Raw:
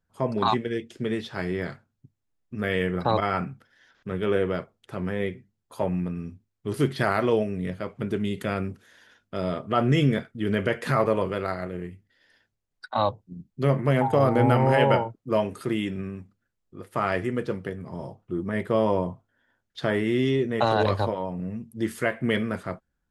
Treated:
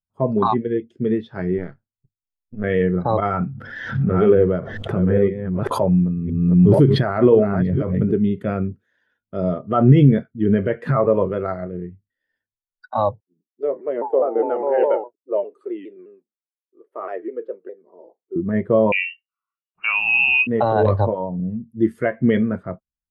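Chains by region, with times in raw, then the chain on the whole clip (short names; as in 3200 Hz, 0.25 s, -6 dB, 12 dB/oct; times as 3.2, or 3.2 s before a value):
1.58–2.64 half-wave gain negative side -12 dB + mismatched tape noise reduction decoder only
3.25–8.13 reverse delay 0.508 s, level -8 dB + bell 75 Hz +3 dB 1.5 oct + backwards sustainer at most 22 dB/s
13.2–18.36 ladder high-pass 320 Hz, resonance 40% + shaped vibrato saw down 4.9 Hz, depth 160 cents
18.92–20.47 inverted band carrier 2900 Hz + mismatched tape noise reduction decoder only
whole clip: high shelf 2600 Hz -6.5 dB; maximiser +13 dB; spectral expander 1.5:1; gain -1 dB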